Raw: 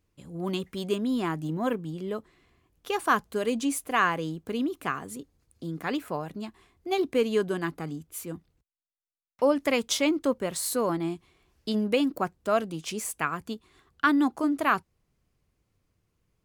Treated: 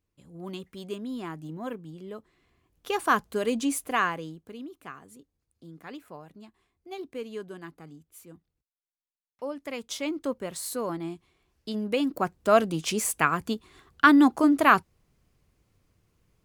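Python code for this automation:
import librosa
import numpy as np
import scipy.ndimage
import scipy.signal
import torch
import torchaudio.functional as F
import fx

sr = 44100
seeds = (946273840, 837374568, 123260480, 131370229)

y = fx.gain(x, sr, db=fx.line((2.14, -7.5), (2.91, 0.5), (3.89, 0.5), (4.56, -12.0), (9.61, -12.0), (10.24, -4.5), (11.77, -4.5), (12.57, 5.5)))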